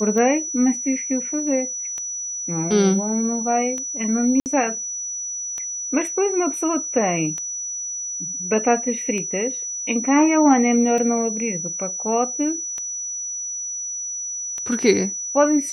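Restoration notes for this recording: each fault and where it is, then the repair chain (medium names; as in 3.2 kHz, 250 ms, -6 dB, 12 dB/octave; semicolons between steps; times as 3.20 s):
tick 33 1/3 rpm -17 dBFS
whine 5.9 kHz -26 dBFS
4.40–4.46 s: dropout 59 ms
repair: de-click; band-stop 5.9 kHz, Q 30; interpolate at 4.40 s, 59 ms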